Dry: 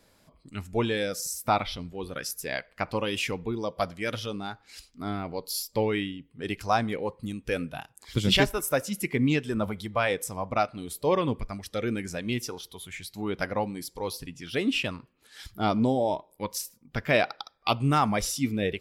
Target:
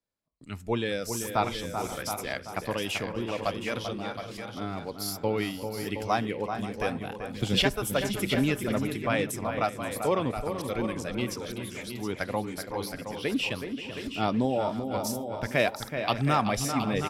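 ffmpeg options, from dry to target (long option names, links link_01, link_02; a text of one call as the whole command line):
ffmpeg -i in.wav -filter_complex "[0:a]agate=range=-27dB:threshold=-51dB:ratio=16:detection=peak,acrossover=split=130[link_01][link_02];[link_01]acompressor=threshold=-35dB:ratio=1.5[link_03];[link_03][link_02]amix=inputs=2:normalize=0,asplit=2[link_04][link_05];[link_05]adelay=422,lowpass=frequency=2200:poles=1,volume=-7dB,asplit=2[link_06][link_07];[link_07]adelay=422,lowpass=frequency=2200:poles=1,volume=0.3,asplit=2[link_08][link_09];[link_09]adelay=422,lowpass=frequency=2200:poles=1,volume=0.3,asplit=2[link_10][link_11];[link_11]adelay=422,lowpass=frequency=2200:poles=1,volume=0.3[link_12];[link_06][link_08][link_10][link_12]amix=inputs=4:normalize=0[link_13];[link_04][link_13]amix=inputs=2:normalize=0,atempo=1.1,asplit=2[link_14][link_15];[link_15]aecho=0:1:421|530|719:0.141|0.15|0.355[link_16];[link_14][link_16]amix=inputs=2:normalize=0,volume=-2dB" out.wav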